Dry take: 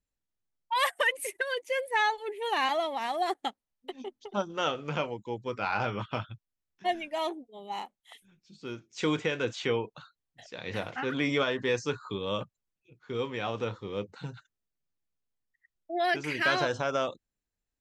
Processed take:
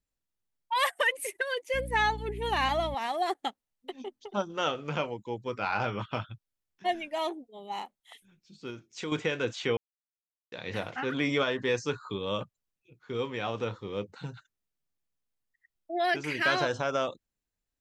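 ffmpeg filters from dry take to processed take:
-filter_complex "[0:a]asettb=1/sr,asplit=3[a][b][c];[a]atrim=end=1.744[d];[b]atrim=start=1.74:end=2.95,asetpts=PTS-STARTPTS,afade=t=in:d=0.004:c=qsin,afade=t=out:st=1.206:d=0.004:c=qsin,aeval=exprs='val(0)+0.0141*(sin(2*PI*60*n/s)+sin(2*PI*2*60*n/s)/2+sin(2*PI*3*60*n/s)/3+sin(2*PI*4*60*n/s)/4+sin(2*PI*5*60*n/s)/5)':c=same[e];[c]atrim=start=2.946[f];[d][e]acrossfade=d=0.004:c1=hsin:c2=qsin[g];[g][f]acrossfade=d=0.004:c1=qsin:c2=hsin,asettb=1/sr,asplit=3[h][i][j];[h]atrim=end=8.704[k];[i]atrim=start=8.7:end=9.12,asetpts=PTS-STARTPTS,afade=t=in:d=0.004:c=qsin,afade=t=out:st=0.416:d=0.004:c=qsin,acompressor=threshold=-38dB:ratio=2:attack=3.2:release=140:knee=1:detection=peak[l];[j]atrim=start=9.116[m];[k][l]acrossfade=d=0.004:c1=hsin:c2=qsin[n];[n][m]acrossfade=d=0.004:c1=qsin:c2=hsin,asplit=3[o][p][q];[o]atrim=end=9.77,asetpts=PTS-STARTPTS,afade=t=out:st=9.766:d=0.004:c=hsin[r];[p]atrim=start=9.77:end=10.52,asetpts=PTS-STARTPTS,volume=0[s];[q]atrim=start=10.52,asetpts=PTS-STARTPTS,afade=t=in:d=0.004:c=hsin[t];[r][s][t]concat=n=3:v=0:a=1"

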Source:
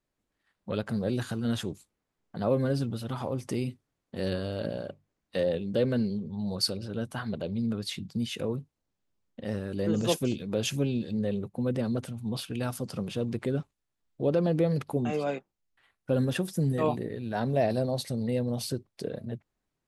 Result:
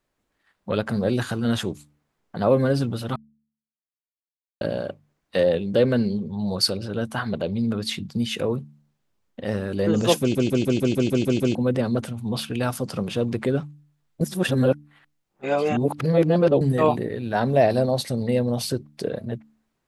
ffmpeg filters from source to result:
-filter_complex "[0:a]asplit=14[a][b][c][d][e][f][g][h][i][j][k][l][m][n];[a]atrim=end=3.16,asetpts=PTS-STARTPTS,afade=t=out:st=3.156:d=0.004:c=hsin[o];[b]atrim=start=3.16:end=4.61,asetpts=PTS-STARTPTS,volume=0[p];[c]atrim=start=4.61:end=10.352,asetpts=PTS-STARTPTS,afade=t=in:d=0.004:c=hsin[q];[d]atrim=start=10.198:end=10.352[r];[e]atrim=start=10.198:end=10.352[s];[f]atrim=start=10.198:end=10.352[t];[g]atrim=start=10.198:end=10.352[u];[h]atrim=start=10.198:end=10.352[v];[i]atrim=start=10.198:end=10.352[w];[j]atrim=start=10.198:end=10.352[x];[k]atrim=start=10.198:end=10.352[y];[l]atrim=start=11.548:end=14.212[z];[m]atrim=start=14.208:end=16.612,asetpts=PTS-STARTPTS,areverse[aa];[n]atrim=start=16.608[ab];[o][p][q]concat=n=3:v=0:a=1[ac];[ac][r]acrossfade=d=0.004:c1=hsin:c2=hsin[ad];[ad][s]acrossfade=d=0.004:c1=hsin:c2=hsin[ae];[ae][t]acrossfade=d=0.004:c1=hsin:c2=hsin[af];[af][u]acrossfade=d=0.004:c1=hsin:c2=hsin[ag];[ag][v]acrossfade=d=0.004:c1=hsin:c2=hsin[ah];[ah][w]acrossfade=d=0.004:c1=hsin:c2=hsin[ai];[ai][x]acrossfade=d=0.004:c1=hsin:c2=hsin[aj];[aj][y]acrossfade=d=0.004:c1=hsin:c2=hsin[ak];[ak][z]acrossfade=d=0.004:c1=hsin:c2=hsin[al];[al][aa]acrossfade=d=0.004:c1=hsin:c2=hsin[am];[am][ab]acrossfade=d=0.004:c1=hsin:c2=hsin,equalizer=f=1.2k:t=o:w=2.9:g=4,bandreject=f=73.58:t=h:w=4,bandreject=f=147.16:t=h:w=4,bandreject=f=220.74:t=h:w=4,bandreject=f=294.32:t=h:w=4,volume=5.5dB"

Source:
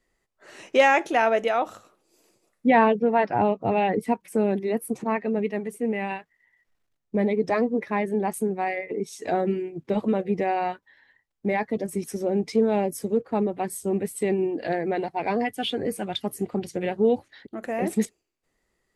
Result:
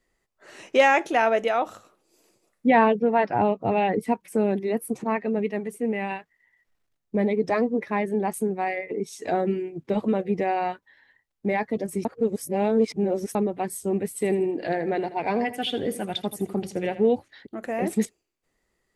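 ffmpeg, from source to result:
-filter_complex "[0:a]asettb=1/sr,asplit=3[a][b][c];[a]atrim=end=14.084[d];[b]atrim=start=14.08:end=17.08,asetpts=PTS-STARTPTS,afade=t=in:d=0.004:c=qsin,afade=t=out:st=2.996:d=0.004:c=qsin,aecho=1:1:81|162|243|324:0.2|0.0738|0.0273|0.0101,atrim=end_sample=132300[e];[c]atrim=start=17.076[f];[d][e]acrossfade=d=0.004:c1=hsin:c2=qsin[g];[g][f]acrossfade=d=0.004:c1=qsin:c2=hsin,asplit=3[h][i][j];[h]atrim=end=12.052[k];[i]atrim=start=12.048:end=13.352,asetpts=PTS-STARTPTS,areverse[l];[j]atrim=start=13.348[m];[k][l]acrossfade=d=0.004:c1=hsin:c2=hsin[n];[n][m]acrossfade=d=0.004:c1=hsin:c2=hsin"

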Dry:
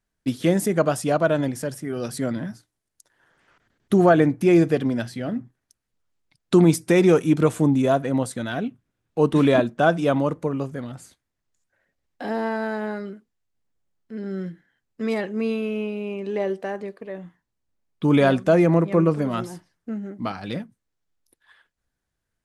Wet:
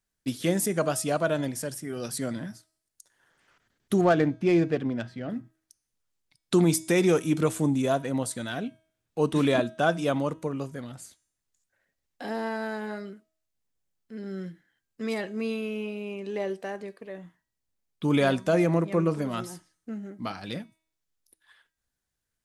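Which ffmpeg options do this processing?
-filter_complex "[0:a]asettb=1/sr,asplit=3[a][b][c];[a]atrim=end=4.014[d];[b]atrim=start=4.01:end=5.3,asetpts=PTS-STARTPTS,afade=t=in:d=0.004:c=qsin,afade=t=out:st=1.286:d=0.004:c=qsin,adynamicsmooth=sensitivity=1.5:basefreq=2.2k[e];[c]atrim=start=5.296[f];[d][e]acrossfade=d=0.004:c1=hsin:c2=qsin[g];[g][f]acrossfade=d=0.004:c1=qsin:c2=hsin,highshelf=f=3.1k:g=9,bandreject=f=319.8:t=h:w=4,bandreject=f=639.6:t=h:w=4,bandreject=f=959.4:t=h:w=4,bandreject=f=1.2792k:t=h:w=4,bandreject=f=1.599k:t=h:w=4,bandreject=f=1.9188k:t=h:w=4,bandreject=f=2.2386k:t=h:w=4,bandreject=f=2.5584k:t=h:w=4,bandreject=f=2.8782k:t=h:w=4,bandreject=f=3.198k:t=h:w=4,bandreject=f=3.5178k:t=h:w=4,bandreject=f=3.8376k:t=h:w=4,bandreject=f=4.1574k:t=h:w=4,bandreject=f=4.4772k:t=h:w=4,bandreject=f=4.797k:t=h:w=4,bandreject=f=5.1168k:t=h:w=4,bandreject=f=5.4366k:t=h:w=4,bandreject=f=5.7564k:t=h:w=4,bandreject=f=6.0762k:t=h:w=4,bandreject=f=6.396k:t=h:w=4,bandreject=f=6.7158k:t=h:w=4,bandreject=f=7.0356k:t=h:w=4,bandreject=f=7.3554k:t=h:w=4,bandreject=f=7.6752k:t=h:w=4,bandreject=f=7.995k:t=h:w=4,bandreject=f=8.3148k:t=h:w=4,bandreject=f=8.6346k:t=h:w=4,bandreject=f=8.9544k:t=h:w=4,bandreject=f=9.2742k:t=h:w=4,bandreject=f=9.594k:t=h:w=4,bandreject=f=9.9138k:t=h:w=4,bandreject=f=10.2336k:t=h:w=4,volume=-6dB"

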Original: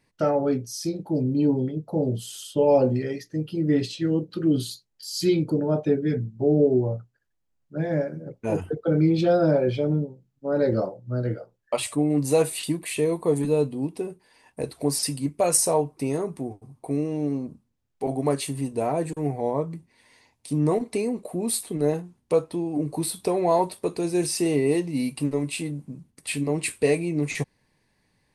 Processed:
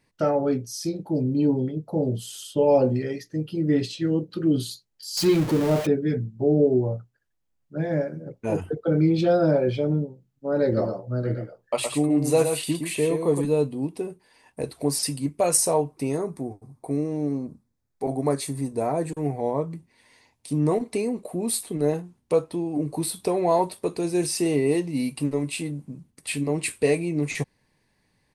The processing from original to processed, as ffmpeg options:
-filter_complex "[0:a]asettb=1/sr,asplit=3[a][b][c];[a]atrim=end=5.174[d];[b]atrim=start=5.17:end=5.87,asetpts=PTS-STARTPTS,afade=t=in:d=0.004:c=qsin,afade=t=out:st=0.696:d=0.004:c=qsin,aeval=exprs='val(0)+0.5*0.0501*sgn(val(0))':c=same[e];[c]atrim=start=5.866[f];[d][e]acrossfade=d=0.004:c1=hsin:c2=qsin[g];[g][f]acrossfade=d=0.004:c1=qsin:c2=hsin,asplit=3[h][i][j];[h]afade=t=out:st=10.76:d=0.02[k];[i]aecho=1:1:116:0.501,afade=t=in:st=10.76:d=0.02,afade=t=out:st=13.4:d=0.02[l];[j]afade=t=in:st=13.4:d=0.02[m];[k][l][m]amix=inputs=3:normalize=0,asettb=1/sr,asplit=3[n][o][p];[n]atrim=end=16.154[q];[o]atrim=start=16.15:end=19.05,asetpts=PTS-STARTPTS,afade=t=in:d=0.004:c=qsin,afade=t=out:st=2.896:d=0.004:c=qsin,equalizer=f=2.9k:t=o:w=0.28:g=-13[r];[p]atrim=start=19.046[s];[q][r]acrossfade=d=0.004:c1=hsin:c2=qsin[t];[t][s]acrossfade=d=0.004:c1=qsin:c2=hsin"

